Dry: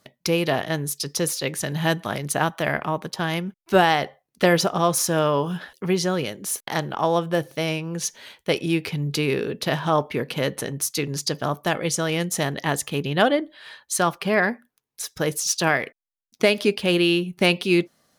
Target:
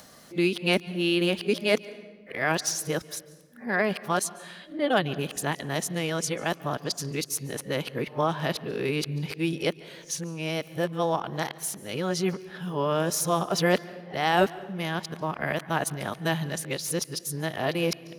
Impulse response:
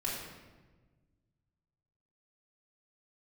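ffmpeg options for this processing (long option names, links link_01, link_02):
-filter_complex "[0:a]areverse,acompressor=mode=upward:threshold=-31dB:ratio=2.5,asplit=2[link_01][link_02];[1:a]atrim=start_sample=2205,adelay=142[link_03];[link_02][link_03]afir=irnorm=-1:irlink=0,volume=-22dB[link_04];[link_01][link_04]amix=inputs=2:normalize=0,volume=-5dB"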